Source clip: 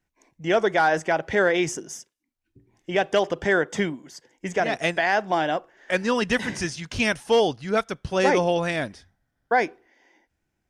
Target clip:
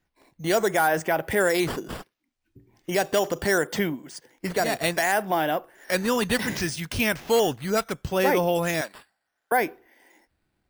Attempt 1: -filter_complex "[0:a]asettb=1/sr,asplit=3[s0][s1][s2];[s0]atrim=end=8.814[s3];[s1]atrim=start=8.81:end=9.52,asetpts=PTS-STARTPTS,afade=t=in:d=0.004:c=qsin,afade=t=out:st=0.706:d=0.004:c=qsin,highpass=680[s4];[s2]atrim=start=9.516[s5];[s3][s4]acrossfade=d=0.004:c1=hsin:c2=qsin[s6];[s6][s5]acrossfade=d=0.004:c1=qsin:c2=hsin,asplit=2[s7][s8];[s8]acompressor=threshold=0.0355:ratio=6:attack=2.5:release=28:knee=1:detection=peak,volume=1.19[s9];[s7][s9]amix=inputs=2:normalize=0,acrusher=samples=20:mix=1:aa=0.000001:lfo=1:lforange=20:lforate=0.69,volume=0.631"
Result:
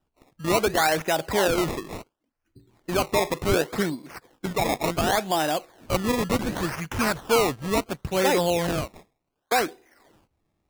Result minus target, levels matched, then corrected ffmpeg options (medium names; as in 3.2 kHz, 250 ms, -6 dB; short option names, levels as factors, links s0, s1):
decimation with a swept rate: distortion +11 dB
-filter_complex "[0:a]asettb=1/sr,asplit=3[s0][s1][s2];[s0]atrim=end=8.814[s3];[s1]atrim=start=8.81:end=9.52,asetpts=PTS-STARTPTS,afade=t=in:d=0.004:c=qsin,afade=t=out:st=0.706:d=0.004:c=qsin,highpass=680[s4];[s2]atrim=start=9.516[s5];[s3][s4]acrossfade=d=0.004:c1=hsin:c2=qsin[s6];[s6][s5]acrossfade=d=0.004:c1=qsin:c2=hsin,asplit=2[s7][s8];[s8]acompressor=threshold=0.0355:ratio=6:attack=2.5:release=28:knee=1:detection=peak,volume=1.19[s9];[s7][s9]amix=inputs=2:normalize=0,acrusher=samples=5:mix=1:aa=0.000001:lfo=1:lforange=5:lforate=0.69,volume=0.631"